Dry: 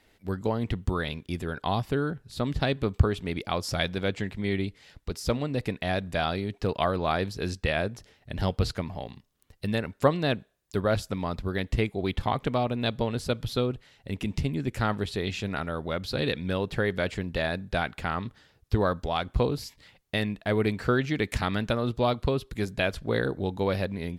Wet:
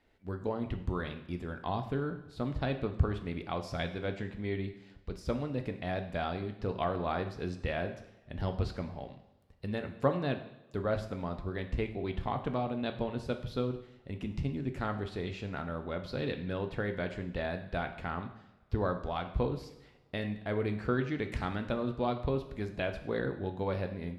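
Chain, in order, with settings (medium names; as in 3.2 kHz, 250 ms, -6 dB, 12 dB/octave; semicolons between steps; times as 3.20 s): low-pass 2 kHz 6 dB/octave; two-slope reverb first 0.73 s, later 3.1 s, from -25 dB, DRR 6 dB; trim -6.5 dB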